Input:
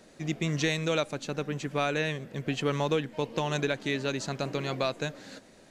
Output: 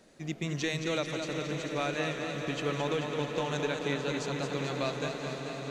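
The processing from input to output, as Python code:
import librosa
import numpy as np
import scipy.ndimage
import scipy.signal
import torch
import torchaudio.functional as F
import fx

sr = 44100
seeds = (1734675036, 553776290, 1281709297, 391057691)

y = fx.echo_swell(x, sr, ms=89, loudest=8, wet_db=-16.5)
y = fx.echo_warbled(y, sr, ms=218, feedback_pct=66, rate_hz=2.8, cents=71, wet_db=-6.5)
y = y * librosa.db_to_amplitude(-4.5)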